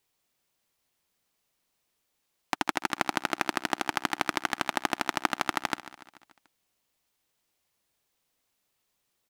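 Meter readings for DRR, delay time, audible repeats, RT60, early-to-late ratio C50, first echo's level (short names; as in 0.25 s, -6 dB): none, 0.145 s, 4, none, none, -16.0 dB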